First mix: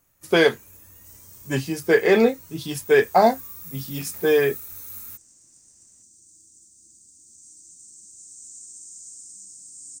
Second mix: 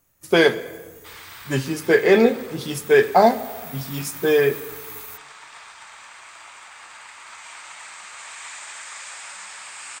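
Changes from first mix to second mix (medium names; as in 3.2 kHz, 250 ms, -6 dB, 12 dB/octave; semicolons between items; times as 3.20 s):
speech: send on; second sound: remove Chebyshev band-stop 320–6000 Hz, order 4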